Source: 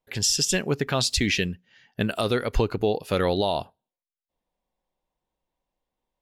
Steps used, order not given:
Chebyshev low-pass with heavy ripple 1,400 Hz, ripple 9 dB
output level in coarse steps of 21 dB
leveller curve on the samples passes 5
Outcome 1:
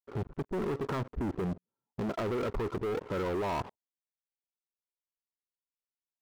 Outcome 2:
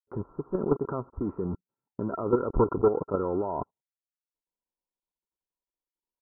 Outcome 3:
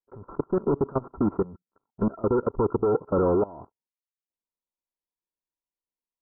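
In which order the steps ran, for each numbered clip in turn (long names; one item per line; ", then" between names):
Chebyshev low-pass with heavy ripple, then output level in coarse steps, then leveller curve on the samples
output level in coarse steps, then leveller curve on the samples, then Chebyshev low-pass with heavy ripple
leveller curve on the samples, then Chebyshev low-pass with heavy ripple, then output level in coarse steps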